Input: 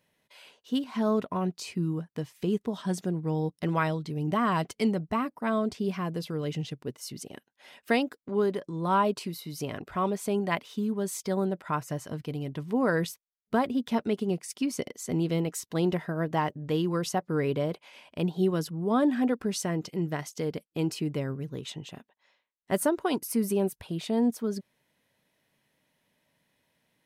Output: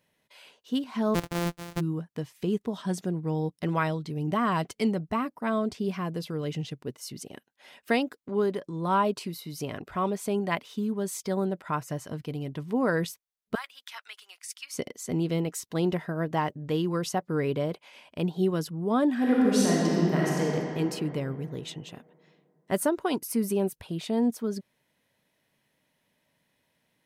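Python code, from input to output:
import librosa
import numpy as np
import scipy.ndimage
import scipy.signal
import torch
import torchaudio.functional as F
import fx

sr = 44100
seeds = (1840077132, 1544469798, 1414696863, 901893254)

y = fx.sample_sort(x, sr, block=256, at=(1.14, 1.79), fade=0.02)
y = fx.highpass(y, sr, hz=1300.0, slope=24, at=(13.55, 14.74))
y = fx.reverb_throw(y, sr, start_s=19.16, length_s=1.27, rt60_s=3.0, drr_db=-5.5)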